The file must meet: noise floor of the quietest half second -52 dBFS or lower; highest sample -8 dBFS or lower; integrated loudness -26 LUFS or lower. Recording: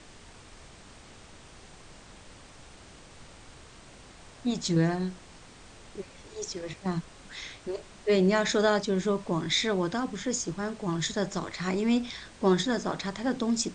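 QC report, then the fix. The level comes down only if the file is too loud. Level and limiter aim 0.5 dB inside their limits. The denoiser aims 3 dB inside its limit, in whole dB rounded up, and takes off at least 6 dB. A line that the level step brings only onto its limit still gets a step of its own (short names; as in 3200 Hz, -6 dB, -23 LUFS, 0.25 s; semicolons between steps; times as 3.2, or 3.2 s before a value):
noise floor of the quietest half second -50 dBFS: fail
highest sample -11.5 dBFS: OK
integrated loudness -29.0 LUFS: OK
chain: denoiser 6 dB, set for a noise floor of -50 dBFS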